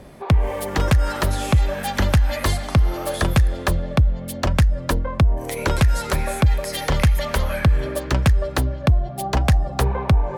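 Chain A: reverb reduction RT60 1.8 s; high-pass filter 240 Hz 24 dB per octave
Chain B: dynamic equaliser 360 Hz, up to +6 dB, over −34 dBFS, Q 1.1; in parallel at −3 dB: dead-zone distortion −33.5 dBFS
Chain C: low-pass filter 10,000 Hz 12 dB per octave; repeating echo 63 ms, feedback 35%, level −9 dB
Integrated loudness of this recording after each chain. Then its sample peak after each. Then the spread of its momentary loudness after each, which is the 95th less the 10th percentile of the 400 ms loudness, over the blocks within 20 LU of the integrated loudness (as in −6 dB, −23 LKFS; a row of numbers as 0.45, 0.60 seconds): −28.0, −16.0, −20.0 LKFS; −7.0, −1.0, −6.5 dBFS; 5, 4, 4 LU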